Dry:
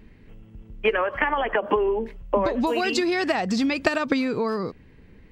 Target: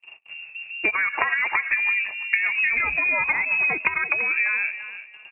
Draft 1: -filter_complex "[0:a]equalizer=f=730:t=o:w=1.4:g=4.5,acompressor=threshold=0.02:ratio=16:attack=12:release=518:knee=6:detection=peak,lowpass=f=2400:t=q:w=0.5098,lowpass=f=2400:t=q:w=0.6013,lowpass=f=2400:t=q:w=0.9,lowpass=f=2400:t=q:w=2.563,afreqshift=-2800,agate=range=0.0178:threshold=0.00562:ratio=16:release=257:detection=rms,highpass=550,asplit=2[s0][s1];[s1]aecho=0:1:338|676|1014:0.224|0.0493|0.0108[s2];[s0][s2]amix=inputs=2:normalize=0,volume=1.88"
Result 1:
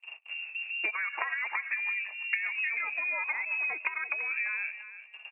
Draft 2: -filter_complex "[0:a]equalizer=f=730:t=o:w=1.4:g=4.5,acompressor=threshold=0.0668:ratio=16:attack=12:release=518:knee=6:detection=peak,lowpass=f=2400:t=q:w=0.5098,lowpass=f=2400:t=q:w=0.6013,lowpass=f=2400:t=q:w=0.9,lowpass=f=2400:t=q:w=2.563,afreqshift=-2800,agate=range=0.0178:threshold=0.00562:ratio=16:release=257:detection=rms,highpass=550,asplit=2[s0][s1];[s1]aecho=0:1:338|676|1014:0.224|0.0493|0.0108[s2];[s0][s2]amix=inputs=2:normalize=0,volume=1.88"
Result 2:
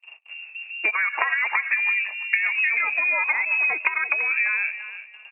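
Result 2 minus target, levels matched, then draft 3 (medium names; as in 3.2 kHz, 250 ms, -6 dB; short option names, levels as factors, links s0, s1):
500 Hz band -3.0 dB
-filter_complex "[0:a]equalizer=f=730:t=o:w=1.4:g=4.5,acompressor=threshold=0.0668:ratio=16:attack=12:release=518:knee=6:detection=peak,lowpass=f=2400:t=q:w=0.5098,lowpass=f=2400:t=q:w=0.6013,lowpass=f=2400:t=q:w=0.9,lowpass=f=2400:t=q:w=2.563,afreqshift=-2800,agate=range=0.0178:threshold=0.00562:ratio=16:release=257:detection=rms,asplit=2[s0][s1];[s1]aecho=0:1:338|676|1014:0.224|0.0493|0.0108[s2];[s0][s2]amix=inputs=2:normalize=0,volume=1.88"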